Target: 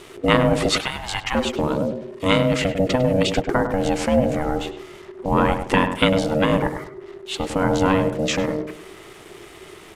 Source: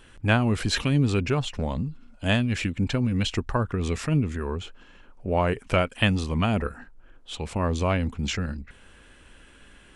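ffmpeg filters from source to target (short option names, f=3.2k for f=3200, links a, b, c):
-filter_complex "[0:a]asettb=1/sr,asplit=3[a][b][c];[a]atrim=end=0.714[d];[b]atrim=start=0.71:end=1.35,asetpts=PTS-STARTPTS,afade=t=in:d=0.004:c=qsin,afade=t=out:st=0.636:d=0.004:c=qsin,highpass=f=520:w=0.5412,highpass=f=520:w=1.3066[e];[c]atrim=start=1.346[f];[d][e]acrossfade=d=0.004:c1=hsin:c2=qsin[g];[g][f]acrossfade=d=0.004:c1=qsin:c2=hsin,asplit=2[h][i];[i]acompressor=threshold=-33dB:ratio=6,volume=-1dB[j];[h][j]amix=inputs=2:normalize=0,tremolo=f=230:d=0.182,acrusher=bits=7:mix=0:aa=0.5,aeval=exprs='val(0)*sin(2*PI*380*n/s)':c=same,asplit=2[k][l];[l]adelay=101,lowpass=f=1.5k:p=1,volume=-7dB,asplit=2[m][n];[n]adelay=101,lowpass=f=1.5k:p=1,volume=0.32,asplit=2[o][p];[p]adelay=101,lowpass=f=1.5k:p=1,volume=0.32,asplit=2[q][r];[r]adelay=101,lowpass=f=1.5k:p=1,volume=0.32[s];[k][m][o][q][s]amix=inputs=5:normalize=0,aresample=32000,aresample=44100,volume=6.5dB"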